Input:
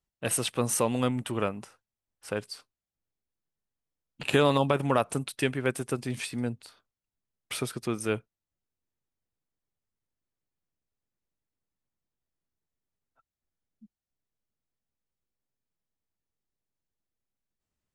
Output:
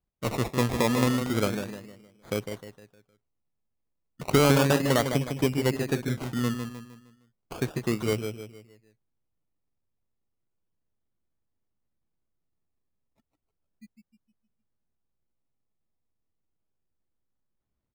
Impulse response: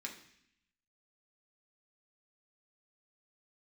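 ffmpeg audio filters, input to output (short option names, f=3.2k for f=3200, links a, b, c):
-filter_complex "[0:a]tiltshelf=f=730:g=5,asplit=2[a][b];[b]adelay=154,lowpass=f=1.8k:p=1,volume=-7dB,asplit=2[c][d];[d]adelay=154,lowpass=f=1.8k:p=1,volume=0.42,asplit=2[e][f];[f]adelay=154,lowpass=f=1.8k:p=1,volume=0.42,asplit=2[g][h];[h]adelay=154,lowpass=f=1.8k:p=1,volume=0.42,asplit=2[i][j];[j]adelay=154,lowpass=f=1.8k:p=1,volume=0.42[k];[a][c][e][g][i][k]amix=inputs=6:normalize=0,acrusher=samples=23:mix=1:aa=0.000001:lfo=1:lforange=13.8:lforate=0.33"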